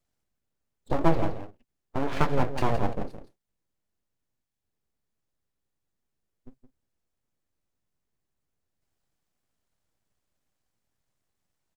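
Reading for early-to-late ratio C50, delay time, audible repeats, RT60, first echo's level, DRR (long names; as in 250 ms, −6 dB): no reverb audible, 167 ms, 1, no reverb audible, −10.0 dB, no reverb audible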